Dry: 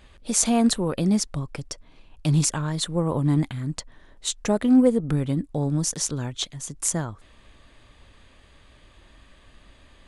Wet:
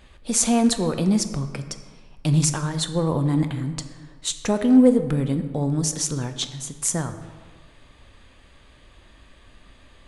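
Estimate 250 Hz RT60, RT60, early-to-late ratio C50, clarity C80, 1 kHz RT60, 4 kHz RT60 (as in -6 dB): 1.6 s, 1.5 s, 10.0 dB, 11.5 dB, 1.6 s, 1.0 s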